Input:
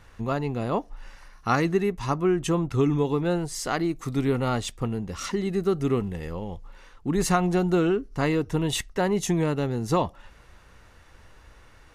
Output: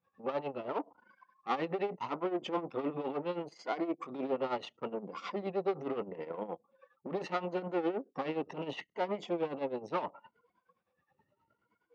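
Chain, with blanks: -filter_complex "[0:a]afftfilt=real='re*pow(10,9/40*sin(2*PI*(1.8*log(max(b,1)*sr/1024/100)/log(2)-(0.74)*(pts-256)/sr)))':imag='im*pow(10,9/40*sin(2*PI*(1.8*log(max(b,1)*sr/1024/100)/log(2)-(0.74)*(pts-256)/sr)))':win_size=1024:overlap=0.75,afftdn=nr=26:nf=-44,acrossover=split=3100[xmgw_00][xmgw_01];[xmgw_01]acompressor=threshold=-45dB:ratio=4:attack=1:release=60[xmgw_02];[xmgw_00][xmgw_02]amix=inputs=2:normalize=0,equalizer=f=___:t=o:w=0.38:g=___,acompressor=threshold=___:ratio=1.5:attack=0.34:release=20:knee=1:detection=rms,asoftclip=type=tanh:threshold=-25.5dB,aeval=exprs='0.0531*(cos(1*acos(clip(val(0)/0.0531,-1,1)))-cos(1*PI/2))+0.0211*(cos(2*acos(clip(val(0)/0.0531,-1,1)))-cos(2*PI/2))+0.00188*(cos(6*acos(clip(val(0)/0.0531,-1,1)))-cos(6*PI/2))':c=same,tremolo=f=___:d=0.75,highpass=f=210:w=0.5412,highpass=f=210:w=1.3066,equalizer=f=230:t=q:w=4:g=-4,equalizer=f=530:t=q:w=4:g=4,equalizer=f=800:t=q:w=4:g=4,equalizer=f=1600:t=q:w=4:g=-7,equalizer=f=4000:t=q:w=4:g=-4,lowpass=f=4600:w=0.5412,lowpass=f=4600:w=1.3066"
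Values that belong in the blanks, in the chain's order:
1100, 3, -33dB, 9.6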